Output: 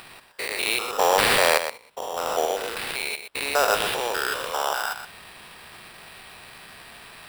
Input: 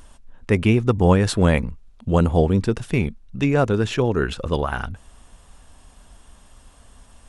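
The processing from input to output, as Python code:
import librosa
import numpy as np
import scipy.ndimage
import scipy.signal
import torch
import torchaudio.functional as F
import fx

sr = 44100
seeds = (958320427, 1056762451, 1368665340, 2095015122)

p1 = fx.spec_steps(x, sr, hold_ms=200)
p2 = scipy.signal.sosfilt(scipy.signal.butter(4, 620.0, 'highpass', fs=sr, output='sos'), p1)
p3 = fx.high_shelf(p2, sr, hz=4300.0, db=11.5)
p4 = fx.level_steps(p3, sr, step_db=15)
p5 = p3 + F.gain(torch.from_numpy(p4), -1.0).numpy()
p6 = fx.sample_hold(p5, sr, seeds[0], rate_hz=6500.0, jitter_pct=0)
p7 = p6 + fx.echo_single(p6, sr, ms=122, db=-9.5, dry=0)
y = F.gain(torch.from_numpy(p7), 4.0).numpy()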